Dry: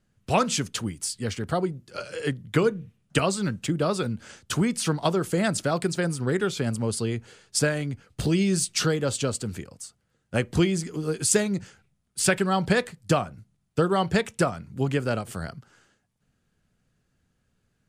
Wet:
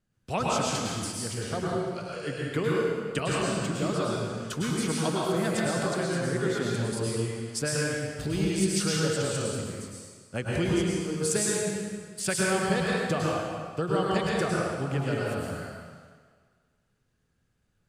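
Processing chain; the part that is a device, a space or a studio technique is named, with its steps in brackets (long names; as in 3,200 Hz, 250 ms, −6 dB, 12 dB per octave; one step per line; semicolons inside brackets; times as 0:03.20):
stairwell (convolution reverb RT60 1.7 s, pre-delay 99 ms, DRR −5 dB)
level −8 dB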